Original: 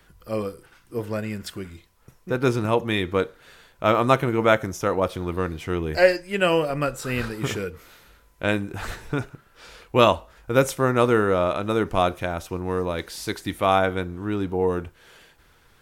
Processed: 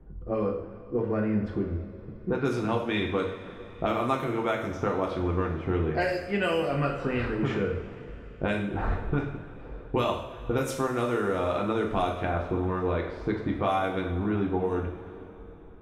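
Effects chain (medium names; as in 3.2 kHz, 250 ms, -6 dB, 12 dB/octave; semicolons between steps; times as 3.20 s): level-controlled noise filter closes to 380 Hz, open at -15.5 dBFS; compression 10:1, threshold -33 dBFS, peak gain reduction 22.5 dB; two-slope reverb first 0.59 s, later 4.2 s, from -17 dB, DRR -0.5 dB; trim +6.5 dB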